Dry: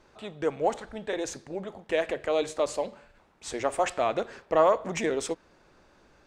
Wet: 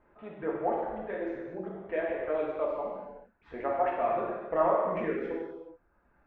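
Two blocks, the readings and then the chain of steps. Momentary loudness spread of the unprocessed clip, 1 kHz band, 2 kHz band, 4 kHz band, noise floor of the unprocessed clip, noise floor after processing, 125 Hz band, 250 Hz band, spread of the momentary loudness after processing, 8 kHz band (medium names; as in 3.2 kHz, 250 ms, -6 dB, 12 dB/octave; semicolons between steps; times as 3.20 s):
14 LU, -1.5 dB, -5.0 dB, under -15 dB, -61 dBFS, -69 dBFS, -3.5 dB, -1.5 dB, 14 LU, under -40 dB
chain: reverb removal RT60 1.5 s; low-pass 2 kHz 24 dB/octave; gated-style reverb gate 450 ms falling, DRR -4.5 dB; trim -7 dB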